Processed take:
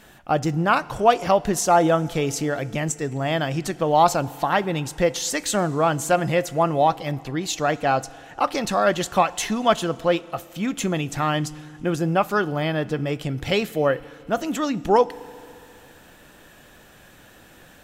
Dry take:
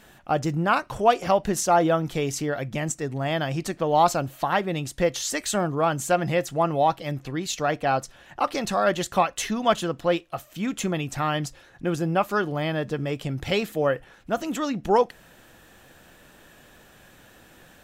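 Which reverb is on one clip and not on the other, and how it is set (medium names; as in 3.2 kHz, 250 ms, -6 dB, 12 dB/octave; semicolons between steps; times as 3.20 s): FDN reverb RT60 2.5 s, low-frequency decay 1×, high-frequency decay 0.95×, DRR 19 dB; trim +2.5 dB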